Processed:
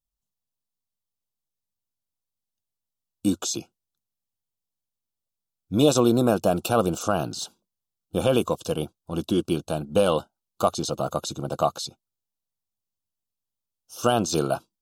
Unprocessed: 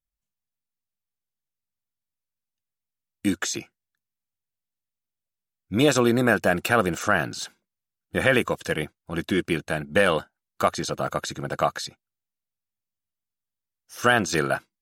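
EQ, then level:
Butterworth band-reject 1,900 Hz, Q 1
+1.0 dB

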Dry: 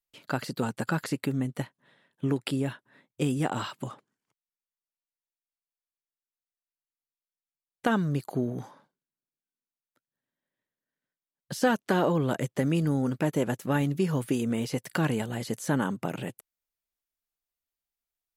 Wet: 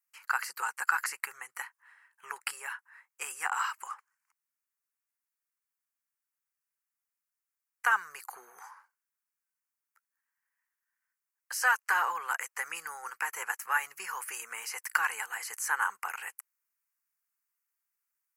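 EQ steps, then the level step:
inverse Chebyshev high-pass filter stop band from 290 Hz, stop band 50 dB
phaser with its sweep stopped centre 1,500 Hz, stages 4
+7.0 dB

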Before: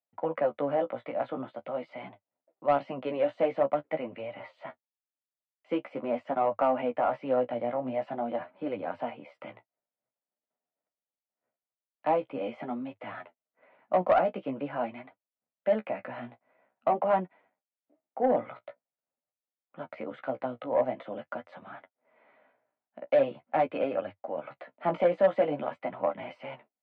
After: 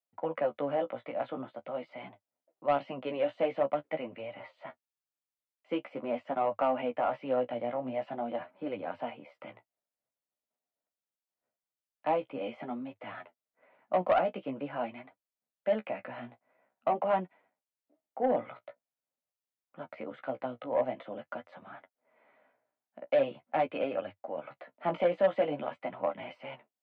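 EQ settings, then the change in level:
dynamic equaliser 3,000 Hz, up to +5 dB, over −52 dBFS, Q 1.7
−3.0 dB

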